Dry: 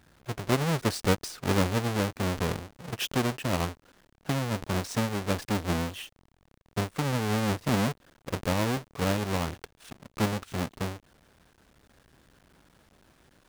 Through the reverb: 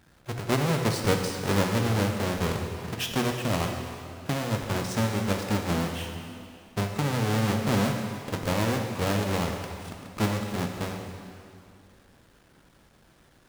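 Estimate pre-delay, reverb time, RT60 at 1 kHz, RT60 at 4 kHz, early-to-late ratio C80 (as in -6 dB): 4 ms, 2.6 s, 2.5 s, 2.3 s, 5.0 dB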